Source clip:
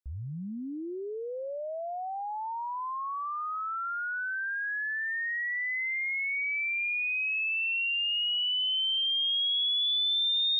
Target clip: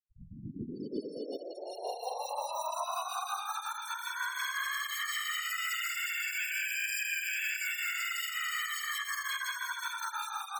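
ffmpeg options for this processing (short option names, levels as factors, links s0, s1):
-filter_complex "[0:a]highpass=260,equalizer=f=300:t=q:w=4:g=-3,equalizer=f=560:t=q:w=4:g=-6,equalizer=f=1400:t=q:w=4:g=-5,lowpass=f=2700:w=0.5412,lowpass=f=2700:w=1.3066,afftdn=nr=20:nf=-44,aecho=1:1:16|71:0.335|0.266,acrusher=samples=9:mix=1:aa=0.000001,flanger=delay=18.5:depth=3.8:speed=0.39,afftfilt=real='hypot(re,im)*cos(2*PI*random(0))':imag='hypot(re,im)*sin(2*PI*random(1))':win_size=512:overlap=0.75,bandreject=f=630:w=12,alimiter=level_in=3.55:limit=0.0631:level=0:latency=1:release=32,volume=0.282,asplit=4[s0][s1][s2][s3];[s1]asetrate=29433,aresample=44100,atempo=1.49831,volume=0.562[s4];[s2]asetrate=33038,aresample=44100,atempo=1.33484,volume=0.2[s5];[s3]asetrate=55563,aresample=44100,atempo=0.793701,volume=0.251[s6];[s0][s4][s5][s6]amix=inputs=4:normalize=0,afftfilt=real='re*gte(hypot(re,im),0.00316)':imag='im*gte(hypot(re,im),0.00316)':win_size=1024:overlap=0.75,volume=2.37"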